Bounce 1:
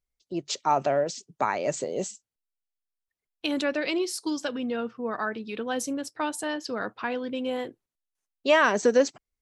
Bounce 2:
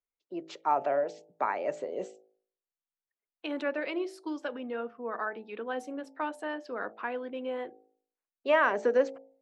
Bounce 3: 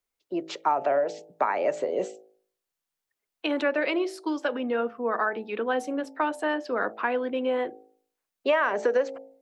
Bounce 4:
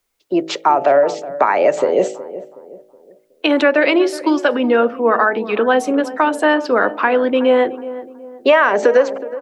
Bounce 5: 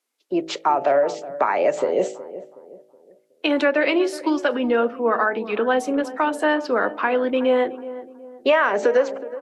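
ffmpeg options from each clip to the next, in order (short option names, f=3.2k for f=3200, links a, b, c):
-filter_complex "[0:a]acrossover=split=270 2600:gain=0.141 1 0.1[a][b][c];[a][b][c]amix=inputs=3:normalize=0,bandreject=f=54.08:t=h:w=4,bandreject=f=108.16:t=h:w=4,bandreject=f=162.24:t=h:w=4,bandreject=f=216.32:t=h:w=4,bandreject=f=270.4:t=h:w=4,bandreject=f=324.48:t=h:w=4,bandreject=f=378.56:t=h:w=4,bandreject=f=432.64:t=h:w=4,bandreject=f=486.72:t=h:w=4,bandreject=f=540.8:t=h:w=4,bandreject=f=594.88:t=h:w=4,bandreject=f=648.96:t=h:w=4,bandreject=f=703.04:t=h:w=4,bandreject=f=757.12:t=h:w=4,bandreject=f=811.2:t=h:w=4,bandreject=f=865.28:t=h:w=4,volume=-3dB"
-filter_complex "[0:a]acrossover=split=390|1300[a][b][c];[a]alimiter=level_in=11.5dB:limit=-24dB:level=0:latency=1:release=349,volume=-11.5dB[d];[d][b][c]amix=inputs=3:normalize=0,acompressor=threshold=-29dB:ratio=6,volume=9dB"
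-filter_complex "[0:a]asplit=2[a][b];[b]alimiter=limit=-18dB:level=0:latency=1:release=187,volume=3dB[c];[a][c]amix=inputs=2:normalize=0,asplit=2[d][e];[e]adelay=370,lowpass=f=1k:p=1,volume=-14dB,asplit=2[f][g];[g]adelay=370,lowpass=f=1k:p=1,volume=0.43,asplit=2[h][i];[i]adelay=370,lowpass=f=1k:p=1,volume=0.43,asplit=2[j][k];[k]adelay=370,lowpass=f=1k:p=1,volume=0.43[l];[d][f][h][j][l]amix=inputs=5:normalize=0,volume=5.5dB"
-af "volume=-5.5dB" -ar 32000 -c:a libvorbis -b:a 48k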